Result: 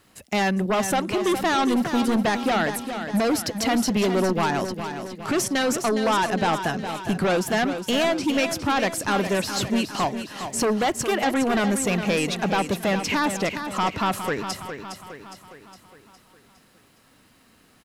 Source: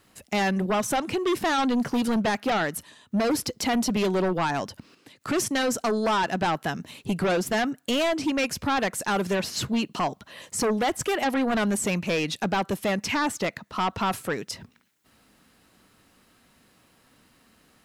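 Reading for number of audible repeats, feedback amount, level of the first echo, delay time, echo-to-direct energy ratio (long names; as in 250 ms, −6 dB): 5, 52%, −9.0 dB, 411 ms, −7.5 dB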